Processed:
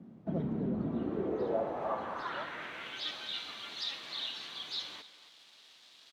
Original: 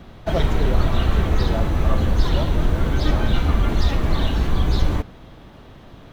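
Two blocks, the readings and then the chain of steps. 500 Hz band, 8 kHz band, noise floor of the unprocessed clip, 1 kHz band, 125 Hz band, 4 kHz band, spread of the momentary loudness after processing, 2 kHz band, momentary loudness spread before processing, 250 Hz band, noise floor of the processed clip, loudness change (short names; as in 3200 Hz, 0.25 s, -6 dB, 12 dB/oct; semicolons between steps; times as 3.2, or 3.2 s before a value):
-10.0 dB, n/a, -44 dBFS, -11.5 dB, -23.5 dB, -5.5 dB, 21 LU, -11.5 dB, 2 LU, -12.0 dB, -59 dBFS, -15.0 dB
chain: HPF 150 Hz 12 dB/oct; requantised 8-bit, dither none; band-pass sweep 210 Hz -> 3900 Hz, 0.79–3.17; speakerphone echo 0.27 s, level -14 dB; gain -1.5 dB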